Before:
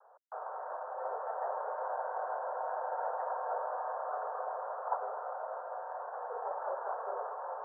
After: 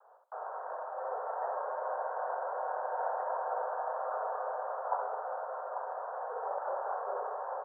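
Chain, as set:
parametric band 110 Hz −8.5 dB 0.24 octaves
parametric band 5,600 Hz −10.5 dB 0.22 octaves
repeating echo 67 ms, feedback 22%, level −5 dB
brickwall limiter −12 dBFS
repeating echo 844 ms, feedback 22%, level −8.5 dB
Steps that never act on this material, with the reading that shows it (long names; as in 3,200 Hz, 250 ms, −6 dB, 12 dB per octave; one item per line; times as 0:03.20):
parametric band 110 Hz: nothing at its input below 380 Hz
parametric band 5,600 Hz: nothing at its input above 1,700 Hz
brickwall limiter −12 dBFS: peak of its input −19.0 dBFS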